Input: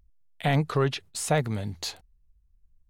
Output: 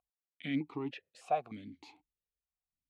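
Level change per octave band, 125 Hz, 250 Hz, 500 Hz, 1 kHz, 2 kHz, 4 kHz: -21.5, -7.0, -12.5, -6.0, -13.5, -16.0 dB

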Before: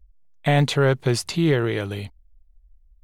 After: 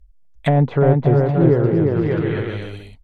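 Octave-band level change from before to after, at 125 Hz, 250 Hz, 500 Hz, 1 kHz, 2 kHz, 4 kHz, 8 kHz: +6.5 dB, +6.5 dB, +6.0 dB, +3.5 dB, -3.0 dB, n/a, under -20 dB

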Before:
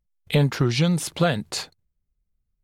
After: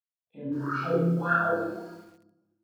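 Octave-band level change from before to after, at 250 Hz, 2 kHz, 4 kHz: -5.0, 0.0, -23.5 dB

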